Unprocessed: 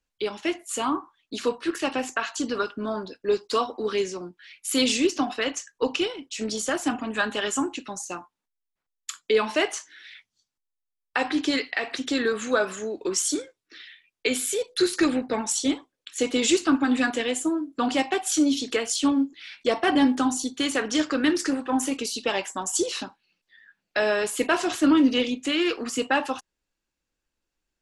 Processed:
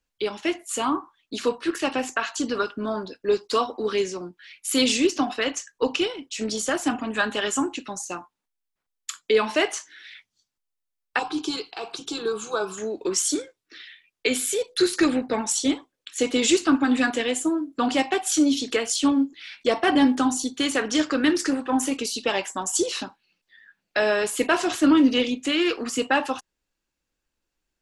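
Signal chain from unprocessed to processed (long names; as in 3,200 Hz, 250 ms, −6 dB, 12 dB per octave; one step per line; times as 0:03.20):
0:11.19–0:12.78: phaser with its sweep stopped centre 380 Hz, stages 8
level +1.5 dB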